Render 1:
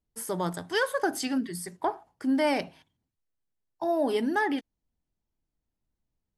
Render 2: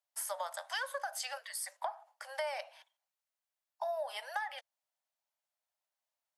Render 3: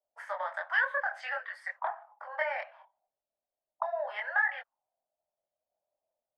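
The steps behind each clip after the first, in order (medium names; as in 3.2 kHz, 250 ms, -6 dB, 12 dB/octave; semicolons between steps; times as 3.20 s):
steep high-pass 550 Hz 96 dB/octave; compression 6:1, threshold -36 dBFS, peak gain reduction 13.5 dB; trim +1 dB
chorus voices 6, 1.4 Hz, delay 24 ms, depth 3 ms; touch-sensitive low-pass 610–1800 Hz up, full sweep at -42 dBFS; trim +5 dB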